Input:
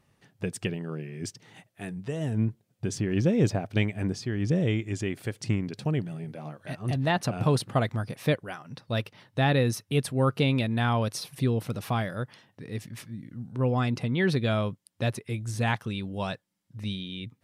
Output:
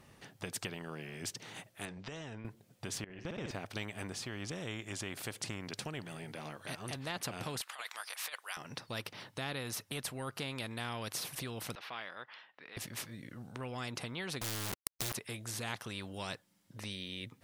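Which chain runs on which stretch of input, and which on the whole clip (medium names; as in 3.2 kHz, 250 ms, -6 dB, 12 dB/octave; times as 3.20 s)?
1.85–2.45 s: low-pass 6 kHz 24 dB/octave + compression 10:1, threshold -34 dBFS
3.04–3.51 s: low-pass 2.7 kHz 6 dB/octave + level held to a coarse grid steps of 23 dB + flutter echo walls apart 10.1 m, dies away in 0.66 s
7.61–8.57 s: high-pass 1.1 kHz 24 dB/octave + compressor with a negative ratio -38 dBFS, ratio -0.5
11.75–12.77 s: high-pass 1.2 kHz + distance through air 340 m
14.41–15.13 s: self-modulated delay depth 0.057 ms + FFT filter 120 Hz 0 dB, 240 Hz -10 dB, 400 Hz -13 dB, 700 Hz -29 dB, 2.5 kHz -16 dB, 4.4 kHz +6 dB, 7.6 kHz +14 dB + companded quantiser 2-bit
whole clip: compression 2:1, threshold -31 dBFS; spectrum-flattening compressor 2:1; trim +2 dB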